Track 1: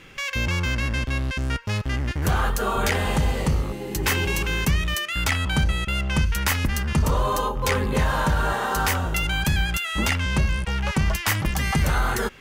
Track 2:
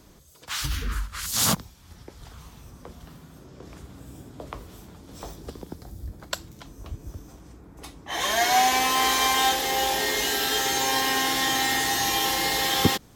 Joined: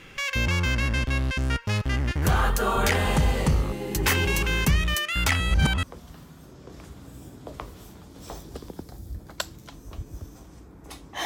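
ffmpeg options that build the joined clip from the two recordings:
-filter_complex "[0:a]apad=whole_dur=11.25,atrim=end=11.25,asplit=2[a][b];[a]atrim=end=5.402[c];[b]atrim=start=5.398:end=5.832,asetpts=PTS-STARTPTS,areverse[d];[1:a]atrim=start=2.758:end=8.18[e];[c][d]acrossfade=d=0.004:c1=hsin:c2=hsin[f];[f][e]acrossfade=d=0.004:c1=hsin:c2=hsin"

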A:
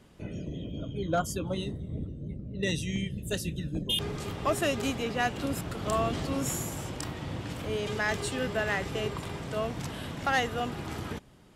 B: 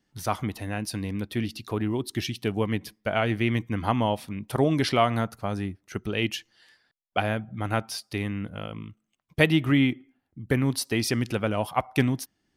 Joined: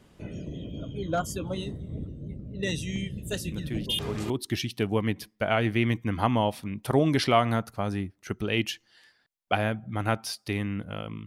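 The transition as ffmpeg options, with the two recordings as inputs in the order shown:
-filter_complex "[1:a]asplit=2[a][b];[0:a]apad=whole_dur=11.26,atrim=end=11.26,atrim=end=4.302[c];[b]atrim=start=1.948:end=8.91[d];[a]atrim=start=1.17:end=1.95,asetpts=PTS-STARTPTS,volume=-7dB,afade=t=in:d=0.004:c=hsin,afade=t=out:st=0.776:d=0.004:c=hsin,adelay=3520[e];[c][d]acrossfade=d=0.004:c1=hsin:c2=hsin[f];[f][e]amix=inputs=2:normalize=0"

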